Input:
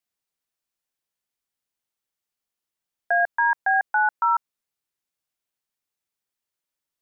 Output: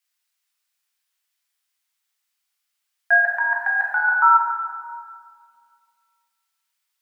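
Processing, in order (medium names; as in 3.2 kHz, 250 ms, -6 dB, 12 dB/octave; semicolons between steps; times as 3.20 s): high-pass 1.4 kHz 12 dB/octave; 3.16–4.13 s: compressor with a negative ratio -29 dBFS, ratio -0.5; reverberation RT60 2.1 s, pre-delay 7 ms, DRR -3 dB; trim +7 dB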